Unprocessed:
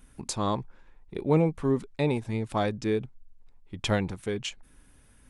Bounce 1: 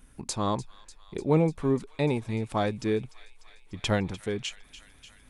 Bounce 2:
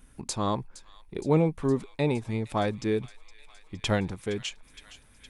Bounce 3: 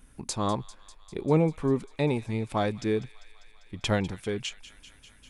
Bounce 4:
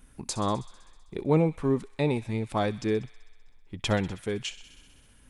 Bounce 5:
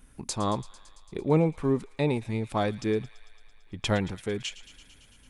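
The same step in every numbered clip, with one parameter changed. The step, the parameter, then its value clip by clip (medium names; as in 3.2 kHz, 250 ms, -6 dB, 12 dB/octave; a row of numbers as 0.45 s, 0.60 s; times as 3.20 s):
feedback echo behind a high-pass, time: 297 ms, 465 ms, 198 ms, 64 ms, 112 ms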